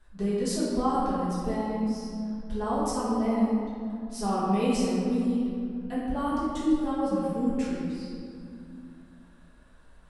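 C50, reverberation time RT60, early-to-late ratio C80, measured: −2.5 dB, 2.5 s, 0.0 dB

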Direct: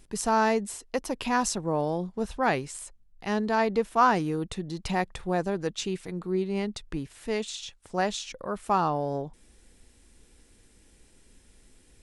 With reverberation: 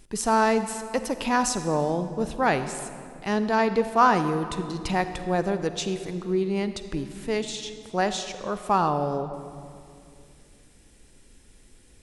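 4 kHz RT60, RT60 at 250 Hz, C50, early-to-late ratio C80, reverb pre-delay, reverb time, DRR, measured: 1.7 s, 3.0 s, 10.5 dB, 11.5 dB, 38 ms, 2.5 s, 10.0 dB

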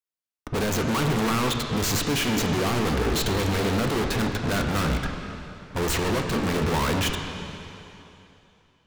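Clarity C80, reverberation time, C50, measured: 5.5 dB, 3.0 s, 4.5 dB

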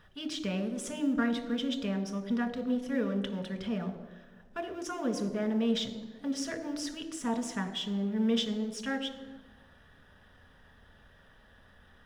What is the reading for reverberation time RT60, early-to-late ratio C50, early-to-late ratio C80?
1.4 s, 10.5 dB, 12.0 dB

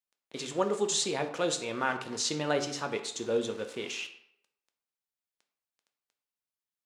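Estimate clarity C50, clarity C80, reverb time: 10.5 dB, 13.0 dB, 0.70 s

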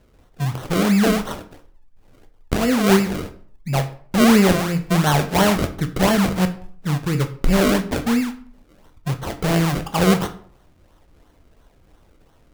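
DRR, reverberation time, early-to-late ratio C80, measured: 7.5 dB, 0.55 s, 17.5 dB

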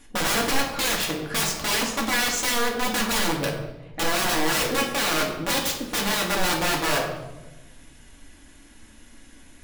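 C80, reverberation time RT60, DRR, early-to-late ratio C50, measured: 7.5 dB, 1.1 s, −1.5 dB, 5.5 dB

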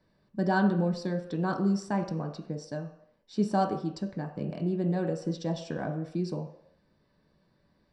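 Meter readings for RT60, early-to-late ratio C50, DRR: non-exponential decay, 9.0 dB, 2.5 dB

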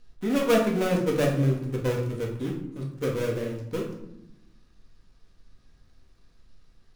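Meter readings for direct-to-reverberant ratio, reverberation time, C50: −2.0 dB, 0.85 s, 6.0 dB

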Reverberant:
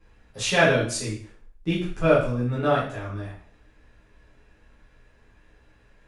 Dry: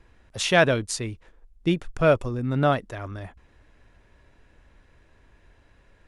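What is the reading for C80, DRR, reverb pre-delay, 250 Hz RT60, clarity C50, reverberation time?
9.0 dB, −9.5 dB, 5 ms, 0.50 s, 4.0 dB, 0.55 s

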